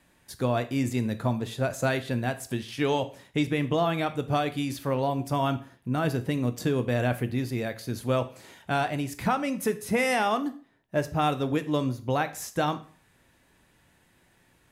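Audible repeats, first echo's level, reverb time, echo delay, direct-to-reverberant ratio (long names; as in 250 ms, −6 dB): no echo audible, no echo audible, 0.45 s, no echo audible, 10.0 dB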